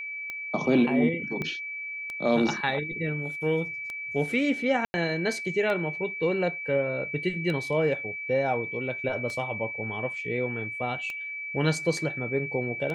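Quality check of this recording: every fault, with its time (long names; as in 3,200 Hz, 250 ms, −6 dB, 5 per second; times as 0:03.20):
scratch tick 33 1/3 rpm −21 dBFS
whistle 2,300 Hz −33 dBFS
0:01.42: click −19 dBFS
0:04.85–0:04.94: drop-out 90 ms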